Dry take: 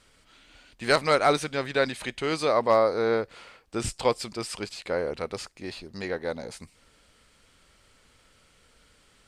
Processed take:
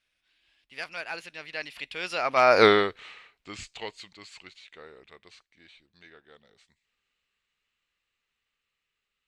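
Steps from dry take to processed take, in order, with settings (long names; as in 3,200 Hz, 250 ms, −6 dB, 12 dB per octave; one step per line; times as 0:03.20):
source passing by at 0:02.62, 42 m/s, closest 2.3 metres
parametric band 2,600 Hz +15 dB 1.9 octaves
level +8.5 dB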